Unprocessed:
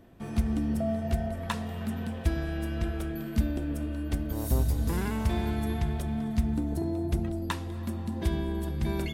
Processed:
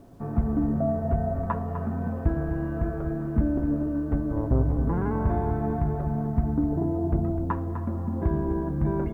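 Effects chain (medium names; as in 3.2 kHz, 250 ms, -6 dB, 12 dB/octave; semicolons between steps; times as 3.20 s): low-pass 1.3 kHz 24 dB/octave; comb 7.1 ms, depth 40%; word length cut 12-bit, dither none; delay 252 ms -10 dB; trim +5 dB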